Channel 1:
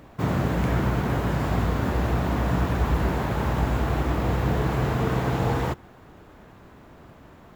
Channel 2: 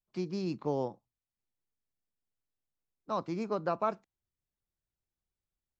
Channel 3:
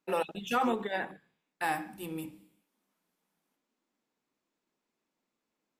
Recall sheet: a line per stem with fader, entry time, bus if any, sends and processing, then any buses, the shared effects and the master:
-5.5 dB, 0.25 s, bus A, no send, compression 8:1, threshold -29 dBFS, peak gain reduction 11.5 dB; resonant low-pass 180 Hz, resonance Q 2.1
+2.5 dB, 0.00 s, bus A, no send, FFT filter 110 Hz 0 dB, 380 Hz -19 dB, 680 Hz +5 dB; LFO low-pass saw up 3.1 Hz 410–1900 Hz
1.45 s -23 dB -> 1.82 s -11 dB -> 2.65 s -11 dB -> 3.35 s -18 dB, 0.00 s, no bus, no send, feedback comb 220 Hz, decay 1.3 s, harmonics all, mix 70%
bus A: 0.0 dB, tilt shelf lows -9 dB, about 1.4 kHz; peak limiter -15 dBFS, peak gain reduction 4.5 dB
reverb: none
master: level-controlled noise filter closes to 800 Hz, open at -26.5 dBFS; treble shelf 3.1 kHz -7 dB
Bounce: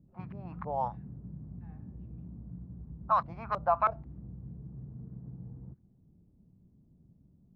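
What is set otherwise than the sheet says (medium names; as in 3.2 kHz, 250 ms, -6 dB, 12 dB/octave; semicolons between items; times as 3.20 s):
stem 1: entry 0.25 s -> 0.00 s; stem 3 -23.0 dB -> -30.0 dB; master: missing treble shelf 3.1 kHz -7 dB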